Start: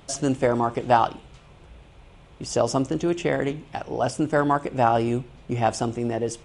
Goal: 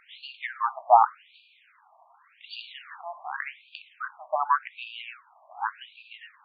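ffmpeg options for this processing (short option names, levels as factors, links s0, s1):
-filter_complex "[0:a]asettb=1/sr,asplit=3[s0][s1][s2];[s0]atrim=end=2.494[s3];[s1]atrim=start=2.49:end=3.31,asetpts=PTS-STARTPTS,afade=t=in:d=0.004:c=qsin,afade=t=out:st=0.816:d=0.004:c=qsin,aeval=exprs='val(0)+0.5*0.0211*sgn(val(0))':c=same[s4];[s2]atrim=start=3.306[s5];[s3][s4]acrossfade=d=0.004:c1=hsin:c2=qsin[s6];[s6][s5]acrossfade=d=0.004:c1=qsin:c2=hsin,afftfilt=real='re*between(b*sr/1024,830*pow(3400/830,0.5+0.5*sin(2*PI*0.87*pts/sr))/1.41,830*pow(3400/830,0.5+0.5*sin(2*PI*0.87*pts/sr))*1.41)':imag='im*between(b*sr/1024,830*pow(3400/830,0.5+0.5*sin(2*PI*0.87*pts/sr))/1.41,830*pow(3400/830,0.5+0.5*sin(2*PI*0.87*pts/sr))*1.41)':win_size=1024:overlap=0.75,volume=1.41"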